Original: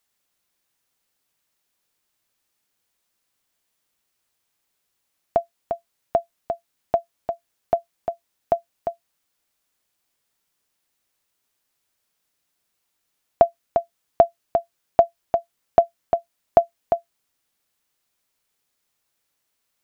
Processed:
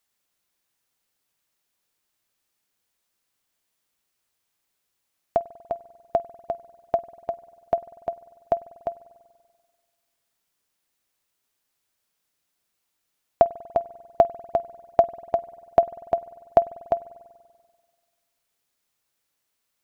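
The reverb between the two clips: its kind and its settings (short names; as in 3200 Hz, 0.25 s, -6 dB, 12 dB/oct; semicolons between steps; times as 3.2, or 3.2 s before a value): spring tank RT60 1.7 s, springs 48 ms, chirp 65 ms, DRR 18 dB; gain -2 dB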